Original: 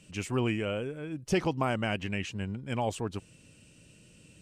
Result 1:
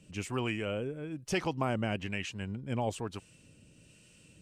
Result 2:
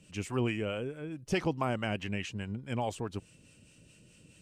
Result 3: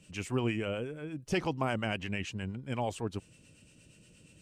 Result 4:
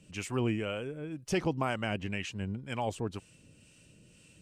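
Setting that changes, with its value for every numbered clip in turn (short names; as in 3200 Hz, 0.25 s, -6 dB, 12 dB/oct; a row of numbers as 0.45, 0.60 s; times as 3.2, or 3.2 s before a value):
harmonic tremolo, rate: 1.1, 4.7, 8.5, 2 Hz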